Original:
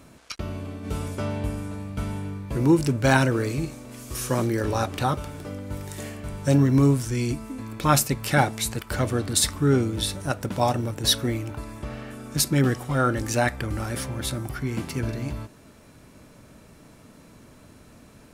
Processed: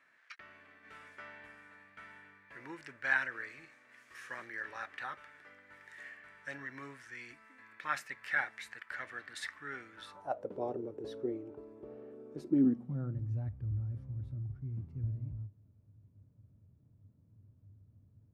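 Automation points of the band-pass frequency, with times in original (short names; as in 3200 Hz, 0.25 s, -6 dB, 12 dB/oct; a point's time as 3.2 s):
band-pass, Q 6.1
9.91 s 1800 Hz
10.55 s 410 Hz
12.36 s 410 Hz
13.37 s 100 Hz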